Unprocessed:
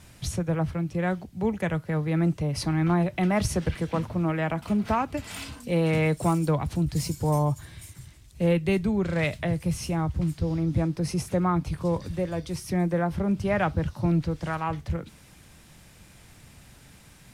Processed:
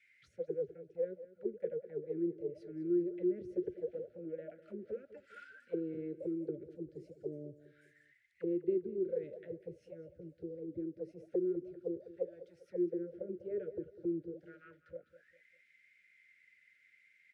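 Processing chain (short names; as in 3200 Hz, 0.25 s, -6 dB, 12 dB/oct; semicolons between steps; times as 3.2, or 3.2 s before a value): Chebyshev band-stop 590–1400 Hz, order 5; auto-wah 360–2300 Hz, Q 19, down, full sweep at -22 dBFS; feedback echo 0.2 s, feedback 38%, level -15 dB; gain +4 dB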